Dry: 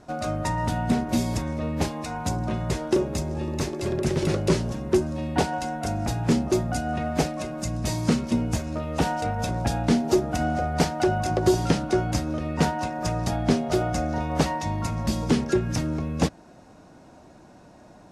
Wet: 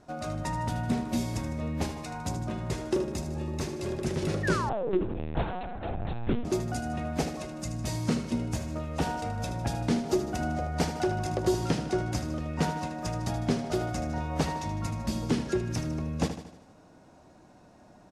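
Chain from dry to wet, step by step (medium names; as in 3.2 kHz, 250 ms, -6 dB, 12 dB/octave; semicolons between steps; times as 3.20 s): 4.43–5.04 s: painted sound fall 260–1900 Hz -26 dBFS; feedback delay 77 ms, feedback 52%, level -10 dB; 4.69–6.45 s: LPC vocoder at 8 kHz pitch kept; trim -6 dB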